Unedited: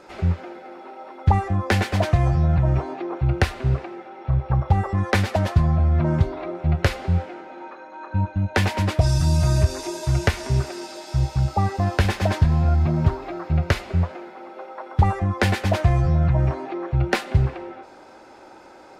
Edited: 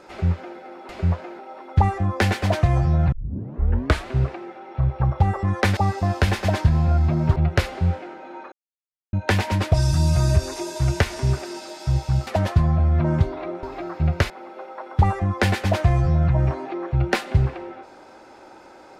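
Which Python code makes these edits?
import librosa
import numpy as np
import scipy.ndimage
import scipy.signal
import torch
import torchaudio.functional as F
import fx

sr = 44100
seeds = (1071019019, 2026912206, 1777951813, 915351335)

y = fx.edit(x, sr, fx.tape_start(start_s=2.62, length_s=0.96),
    fx.swap(start_s=5.27, length_s=1.36, other_s=11.54, other_length_s=1.59),
    fx.silence(start_s=7.79, length_s=0.61),
    fx.move(start_s=13.8, length_s=0.5, to_s=0.89), tone=tone)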